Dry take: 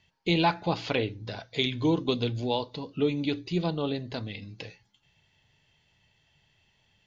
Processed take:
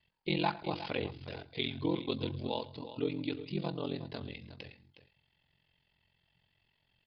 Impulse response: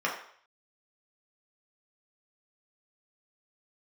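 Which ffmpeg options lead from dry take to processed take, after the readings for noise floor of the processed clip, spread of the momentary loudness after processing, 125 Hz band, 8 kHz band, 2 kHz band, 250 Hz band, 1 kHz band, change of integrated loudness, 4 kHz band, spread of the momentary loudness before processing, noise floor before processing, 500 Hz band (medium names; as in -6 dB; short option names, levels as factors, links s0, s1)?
-77 dBFS, 13 LU, -8.0 dB, no reading, -7.5 dB, -7.5 dB, -7.5 dB, -7.5 dB, -7.5 dB, 14 LU, -69 dBFS, -7.5 dB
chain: -af "aeval=exprs='val(0)*sin(2*PI*22*n/s)':c=same,aecho=1:1:108|363:0.106|0.224,aresample=11025,aresample=44100,volume=0.562"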